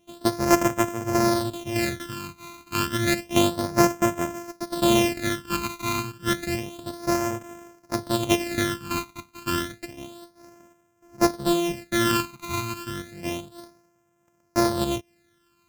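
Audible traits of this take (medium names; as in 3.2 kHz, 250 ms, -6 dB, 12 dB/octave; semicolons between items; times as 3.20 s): a buzz of ramps at a fixed pitch in blocks of 128 samples; phasing stages 12, 0.3 Hz, lowest notch 550–4100 Hz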